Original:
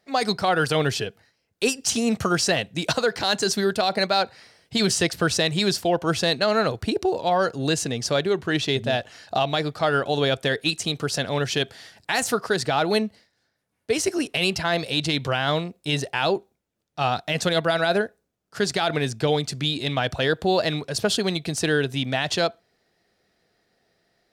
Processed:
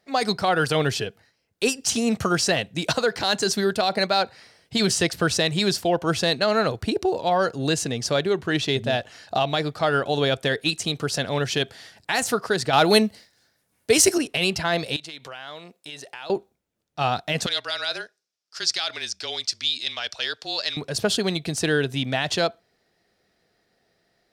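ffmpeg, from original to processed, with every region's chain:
-filter_complex "[0:a]asettb=1/sr,asplit=3[s0][s1][s2];[s0]atrim=end=12.734[s3];[s1]atrim=start=12.73:end=14.18,asetpts=PTS-STARTPTS,afade=t=in:d=0.004:c=qsin,afade=t=out:st=1.446:d=0.004:c=qsin,aemphasis=mode=production:type=cd,acontrast=24[s4];[s2]atrim=start=14.176[s5];[s3][s4]acrossfade=d=0.004:c1=hsin:c2=qsin[s6];[s6][s5]acrossfade=d=0.004:c1=qsin:c2=hsin,asettb=1/sr,asplit=3[s7][s8][s9];[s7]atrim=end=14.964[s10];[s8]atrim=start=14.96:end=16.3,asetpts=PTS-STARTPTS,afade=t=in:d=0.004:c=qsin,afade=t=out:st=1.336:d=0.004:c=qsin,highpass=f=720:p=1,acompressor=threshold=0.0141:ratio=3:attack=3.2:release=140:knee=1:detection=peak[s11];[s9]atrim=start=16.296[s12];[s10][s11]acrossfade=d=0.004:c1=hsin:c2=qsin[s13];[s13][s12]acrossfade=d=0.004:c1=qsin:c2=hsin,asettb=1/sr,asplit=3[s14][s15][s16];[s14]atrim=end=17.464[s17];[s15]atrim=start=17.46:end=20.77,asetpts=PTS-STARTPTS,afade=t=in:d=0.004:c=qsin,afade=t=out:st=3.306:d=0.004:c=qsin,bandpass=f=4200:t=q:w=0.67,equalizer=f=5300:w=2.3:g=10.5,afreqshift=-30[s18];[s16]atrim=start=20.766[s19];[s17][s18]acrossfade=d=0.004:c1=hsin:c2=qsin[s20];[s20][s19]acrossfade=d=0.004:c1=qsin:c2=hsin"

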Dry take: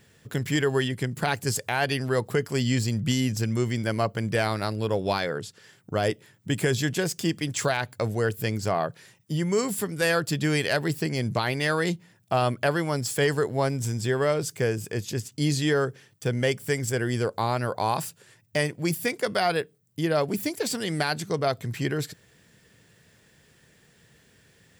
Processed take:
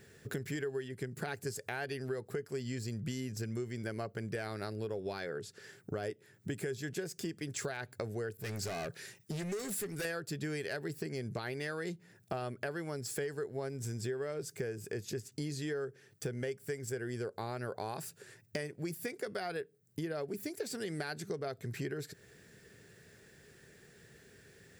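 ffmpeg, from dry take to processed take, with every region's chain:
-filter_complex "[0:a]asettb=1/sr,asplit=3[s0][s1][s2];[s0]atrim=end=8.374[s3];[s1]atrim=start=8.37:end=10.05,asetpts=PTS-STARTPTS,afade=t=in:d=0.004:c=qsin,afade=t=out:st=1.676:d=0.004:c=qsin,asoftclip=type=hard:threshold=0.0316,adynamicequalizer=threshold=0.00316:dfrequency=1700:dqfactor=0.7:tfrequency=1700:tqfactor=0.7:attack=5:release=100:ratio=0.375:range=3:mode=boostabove:tftype=highshelf[s4];[s2]atrim=start=10.046[s5];[s3][s4]acrossfade=d=0.004:c1=hsin:c2=qsin[s6];[s6][s5]acrossfade=d=0.004:c1=qsin:c2=hsin,equalizer=f=400:t=o:w=0.33:g=9,equalizer=f=1000:t=o:w=0.33:g=-6,equalizer=f=1600:t=o:w=0.33:g=4,equalizer=f=3150:t=o:w=0.33:g=-5,acompressor=threshold=0.0178:ratio=6,volume=0.841"

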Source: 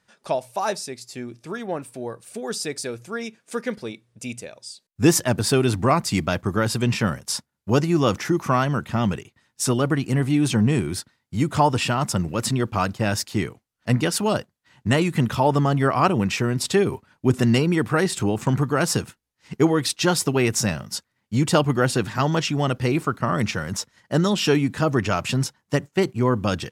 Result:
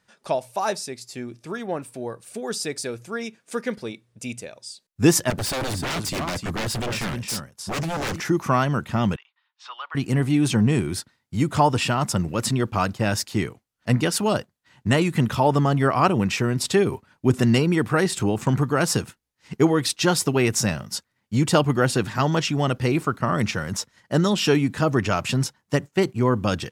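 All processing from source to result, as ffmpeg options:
-filter_complex "[0:a]asettb=1/sr,asplit=3[s0][s1][s2];[s0]atrim=end=5.304[s3];[s1]atrim=start=5.3:end=8.2,asetpts=PTS-STARTPTS,afade=t=in:d=0.004:c=qsin,afade=t=out:st=2.896:d=0.004:c=qsin,aecho=1:1:305:0.299,atrim=end_sample=127890,aeval=exprs='0.0841*(abs(mod(val(0)/0.0841+3,4)-2)-1)':c=same[s4];[s2]atrim=start=8.196[s5];[s3][s4]acrossfade=d=0.004:c1=hsin:c2=qsin[s6];[s6][s5]acrossfade=d=0.004:c1=qsin:c2=hsin,asettb=1/sr,asplit=3[s7][s8][s9];[s7]atrim=end=9.164[s10];[s8]atrim=start=9.16:end=9.95,asetpts=PTS-STARTPTS,afade=t=in:d=0.004:c=qsin,afade=t=out:st=0.786:d=0.004:c=qsin,asuperpass=centerf=1900:order=8:qfactor=0.67,equalizer=f=1900:t=o:w=1.6:g=-7.5[s11];[s9]atrim=start=9.946[s12];[s10][s11]acrossfade=d=0.004:c1=hsin:c2=qsin[s13];[s13][s12]acrossfade=d=0.004:c1=qsin:c2=hsin"

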